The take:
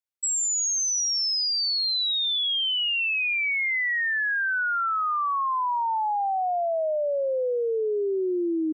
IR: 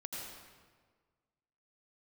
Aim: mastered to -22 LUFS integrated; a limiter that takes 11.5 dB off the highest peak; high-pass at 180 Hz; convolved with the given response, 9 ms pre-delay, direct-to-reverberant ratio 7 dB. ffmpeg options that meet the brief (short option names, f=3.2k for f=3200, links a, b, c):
-filter_complex "[0:a]highpass=180,alimiter=level_in=10dB:limit=-24dB:level=0:latency=1,volume=-10dB,asplit=2[a][b];[1:a]atrim=start_sample=2205,adelay=9[c];[b][c]afir=irnorm=-1:irlink=0,volume=-6.5dB[d];[a][d]amix=inputs=2:normalize=0,volume=12.5dB"